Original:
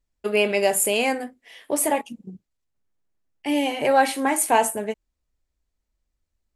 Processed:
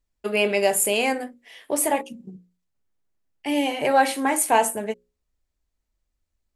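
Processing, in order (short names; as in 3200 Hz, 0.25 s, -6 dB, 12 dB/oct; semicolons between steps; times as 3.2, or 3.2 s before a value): notches 60/120/180/240/300/360/420/480/540 Hz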